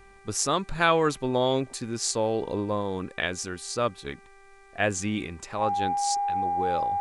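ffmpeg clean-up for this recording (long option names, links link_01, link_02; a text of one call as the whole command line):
ffmpeg -i in.wav -af "bandreject=frequency=392.8:width_type=h:width=4,bandreject=frequency=785.6:width_type=h:width=4,bandreject=frequency=1178.4:width_type=h:width=4,bandreject=frequency=1571.2:width_type=h:width=4,bandreject=frequency=1964:width_type=h:width=4,bandreject=frequency=2356.8:width_type=h:width=4,bandreject=frequency=810:width=30,agate=range=-21dB:threshold=-43dB" out.wav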